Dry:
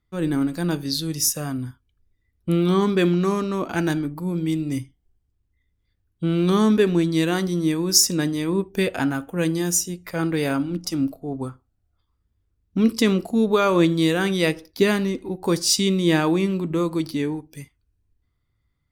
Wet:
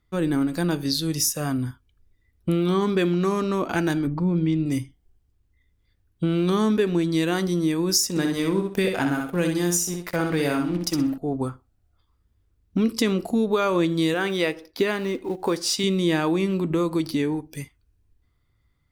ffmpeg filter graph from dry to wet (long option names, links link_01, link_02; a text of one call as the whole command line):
ffmpeg -i in.wav -filter_complex "[0:a]asettb=1/sr,asplit=3[link_01][link_02][link_03];[link_01]atrim=end=4.074[link_04];[link_02]atrim=start=4.07:end=4.66,asetpts=PTS-STARTPTS,afade=type=in:duration=0.004:curve=qsin,afade=type=out:start_time=0.586:duration=0.004:curve=qsin,lowpass=frequency=6200:width=0.5412,lowpass=frequency=6200:width=1.3066,bass=frequency=250:gain=6,treble=frequency=4000:gain=-6[link_05];[link_03]atrim=start=4.656[link_06];[link_04][link_05]acrossfade=duration=0.004:curve1=hsin:curve2=qsin[link_07];[link_07][link_06]acrossfade=duration=0.004:curve1=qsin:curve2=hsin,asettb=1/sr,asplit=3[link_08][link_09][link_10];[link_08]atrim=end=8.094[link_11];[link_09]atrim=start=8.09:end=11.18,asetpts=PTS-STARTPTS,afade=type=in:duration=0.004:curve=qsin,afade=type=out:start_time=3.086:duration=0.004:curve=qsin,aeval=exprs='sgn(val(0))*max(abs(val(0))-0.00708,0)':channel_layout=same,aecho=1:1:63|126|189:0.562|0.124|0.0272,atrim=end_sample=136269[link_12];[link_10]atrim=start=11.176[link_13];[link_11][link_12]acrossfade=duration=0.004:curve1=hsin:curve2=qsin[link_14];[link_14][link_13]acrossfade=duration=0.004:curve1=qsin:curve2=hsin,asettb=1/sr,asplit=3[link_15][link_16][link_17];[link_15]atrim=end=14.144[link_18];[link_16]atrim=start=14.14:end=15.84,asetpts=PTS-STARTPTS,afade=type=in:duration=0.004:curve=qsin,afade=type=out:start_time=1.696:duration=0.004:curve=qsin,acrusher=bits=7:mode=log:mix=0:aa=0.000001,bass=frequency=250:gain=-9,treble=frequency=4000:gain=-7[link_19];[link_17]atrim=start=15.836[link_20];[link_18][link_19]acrossfade=duration=0.004:curve1=hsin:curve2=qsin[link_21];[link_21][link_20]acrossfade=duration=0.004:curve1=qsin:curve2=hsin,bass=frequency=250:gain=-5,treble=frequency=4000:gain=-1,acompressor=threshold=-28dB:ratio=2.5,lowshelf=frequency=160:gain=5,volume=5dB" out.wav